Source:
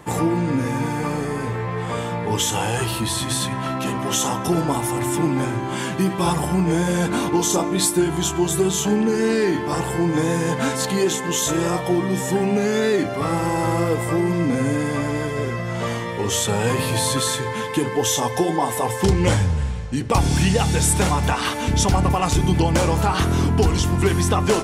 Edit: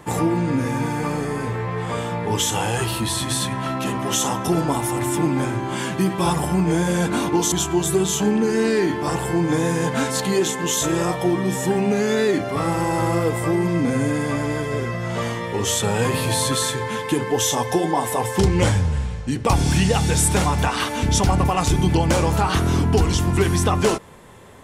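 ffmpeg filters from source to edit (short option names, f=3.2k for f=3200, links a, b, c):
-filter_complex "[0:a]asplit=2[a][b];[a]atrim=end=7.522[c];[b]atrim=start=8.168[d];[c][d]acrossfade=d=0.004:c1=hsin:c2=hsin"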